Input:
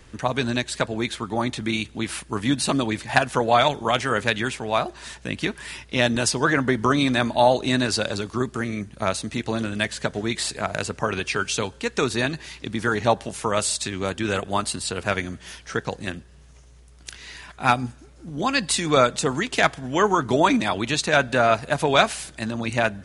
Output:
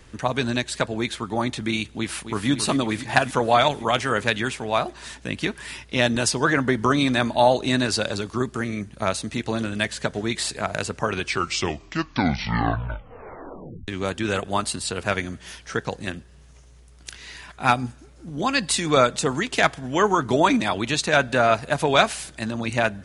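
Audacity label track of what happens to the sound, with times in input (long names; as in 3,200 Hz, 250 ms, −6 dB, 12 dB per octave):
1.970000	2.490000	delay throw 270 ms, feedback 75%, level −9.5 dB
11.140000	11.140000	tape stop 2.74 s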